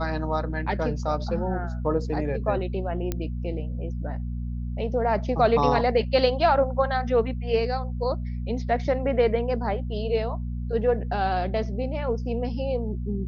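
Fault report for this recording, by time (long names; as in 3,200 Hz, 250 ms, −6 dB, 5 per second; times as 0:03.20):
mains hum 60 Hz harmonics 4 −30 dBFS
0:03.12: click −13 dBFS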